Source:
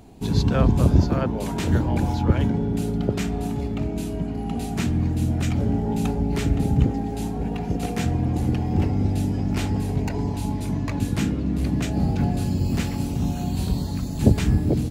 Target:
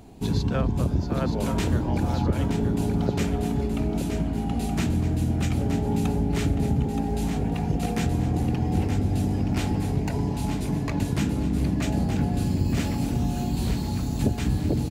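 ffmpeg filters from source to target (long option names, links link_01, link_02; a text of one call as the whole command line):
ffmpeg -i in.wav -af "acompressor=threshold=-20dB:ratio=6,aecho=1:1:923|1846|2769|3692|4615|5538:0.447|0.21|0.0987|0.0464|0.0218|0.0102" out.wav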